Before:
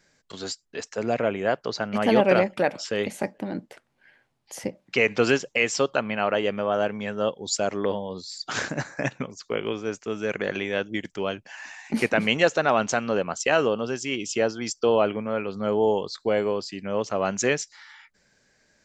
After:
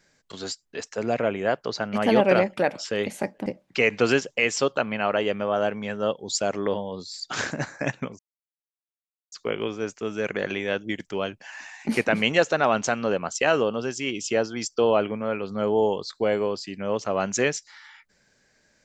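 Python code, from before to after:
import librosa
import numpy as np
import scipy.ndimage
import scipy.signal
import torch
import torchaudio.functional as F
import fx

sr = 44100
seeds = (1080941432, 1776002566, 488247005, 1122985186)

y = fx.edit(x, sr, fx.cut(start_s=3.46, length_s=1.18),
    fx.insert_silence(at_s=9.37, length_s=1.13), tone=tone)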